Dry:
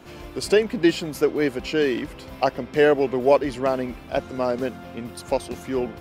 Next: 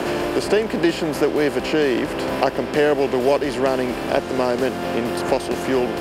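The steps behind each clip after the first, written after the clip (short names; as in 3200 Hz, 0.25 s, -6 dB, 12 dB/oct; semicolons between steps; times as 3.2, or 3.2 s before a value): per-bin compression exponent 0.6; three-band squash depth 70%; gain -1 dB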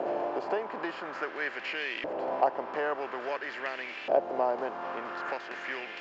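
LFO band-pass saw up 0.49 Hz 610–2600 Hz; downsampling 16000 Hz; gain -2.5 dB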